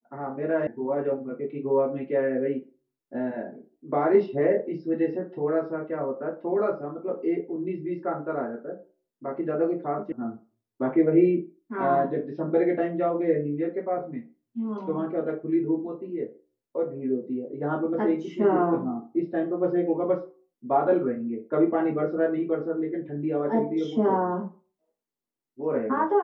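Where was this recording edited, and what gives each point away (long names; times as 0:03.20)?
0:00.67: cut off before it has died away
0:10.12: cut off before it has died away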